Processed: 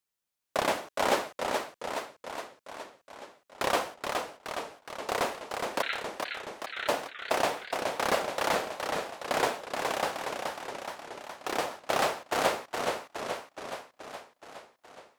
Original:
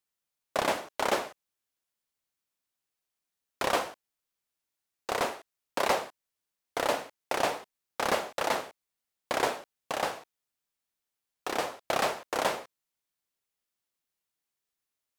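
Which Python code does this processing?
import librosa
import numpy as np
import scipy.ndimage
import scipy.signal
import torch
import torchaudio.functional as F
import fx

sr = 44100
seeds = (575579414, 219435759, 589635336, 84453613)

y = fx.brickwall_bandpass(x, sr, low_hz=1300.0, high_hz=4300.0, at=(5.82, 6.88))
y = fx.echo_warbled(y, sr, ms=421, feedback_pct=63, rate_hz=2.8, cents=152, wet_db=-4.5)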